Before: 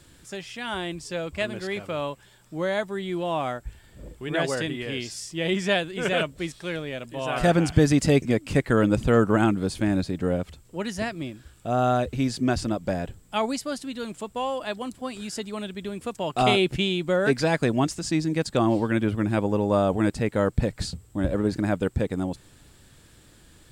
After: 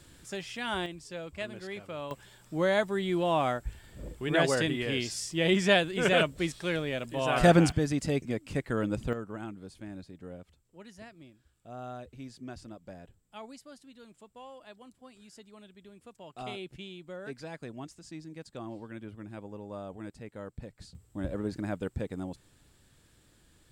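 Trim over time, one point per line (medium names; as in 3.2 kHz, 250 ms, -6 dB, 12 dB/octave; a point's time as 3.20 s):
-2 dB
from 0.86 s -9.5 dB
from 2.11 s 0 dB
from 7.72 s -10 dB
from 9.13 s -19.5 dB
from 20.95 s -9.5 dB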